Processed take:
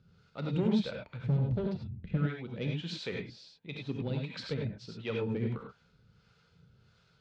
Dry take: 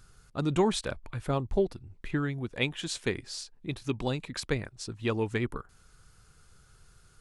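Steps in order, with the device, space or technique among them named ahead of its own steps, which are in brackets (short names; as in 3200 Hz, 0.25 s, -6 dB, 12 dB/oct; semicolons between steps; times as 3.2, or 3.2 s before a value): 1.23–2.17 tone controls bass +11 dB, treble +1 dB; guitar amplifier with harmonic tremolo (harmonic tremolo 1.5 Hz, depth 70%, crossover 490 Hz; soft clip -26 dBFS, distortion -9 dB; speaker cabinet 100–4400 Hz, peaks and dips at 170 Hz +8 dB, 340 Hz -5 dB, 490 Hz +4 dB, 720 Hz -4 dB, 1100 Hz -7 dB, 1700 Hz -5 dB); non-linear reverb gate 0.12 s rising, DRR 0.5 dB; gain -1.5 dB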